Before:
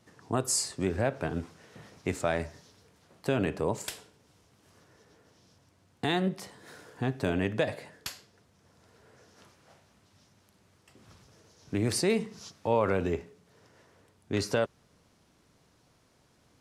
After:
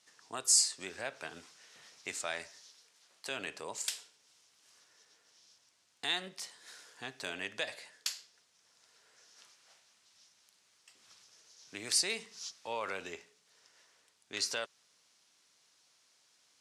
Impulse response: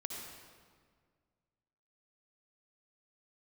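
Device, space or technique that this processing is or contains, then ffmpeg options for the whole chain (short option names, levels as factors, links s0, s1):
piezo pickup straight into a mixer: -filter_complex "[0:a]asettb=1/sr,asplit=3[s0][s1][s2];[s0]atrim=end=2.474[s3];[s1]atrim=start=2.47:end=3.31,asetpts=PTS-STARTPTS,afade=t=in:d=0.004:c=qsin,afade=t=out:st=0.836:d=0.004:c=qsin,highpass=f=210:p=1[s4];[s2]atrim=start=3.306[s5];[s3][s4]acrossfade=d=0.004:c1=hsin:c2=qsin[s6];[s6][s5]acrossfade=d=0.004:c1=qsin:c2=hsin,lowpass=6400,aderivative,volume=2.66"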